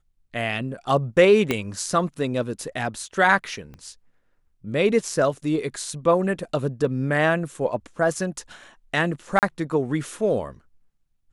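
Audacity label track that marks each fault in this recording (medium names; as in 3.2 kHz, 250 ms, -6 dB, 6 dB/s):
1.510000	1.510000	pop -8 dBFS
3.740000	3.740000	pop -29 dBFS
9.390000	9.430000	dropout 38 ms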